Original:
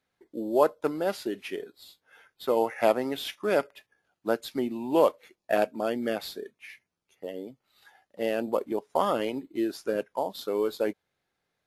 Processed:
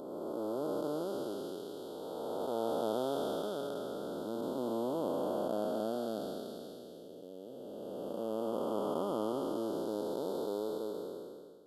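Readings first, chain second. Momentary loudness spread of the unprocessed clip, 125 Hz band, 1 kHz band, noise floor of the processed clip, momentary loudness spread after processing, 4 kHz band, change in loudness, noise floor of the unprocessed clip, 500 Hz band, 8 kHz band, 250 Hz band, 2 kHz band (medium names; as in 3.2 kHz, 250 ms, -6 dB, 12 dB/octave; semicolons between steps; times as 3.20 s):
17 LU, -3.0 dB, -9.0 dB, -49 dBFS, 12 LU, -9.0 dB, -8.5 dB, -83 dBFS, -7.5 dB, -6.5 dB, -5.5 dB, -19.5 dB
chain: spectral blur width 971 ms; elliptic band-stop 1.4–3.2 kHz, stop band 50 dB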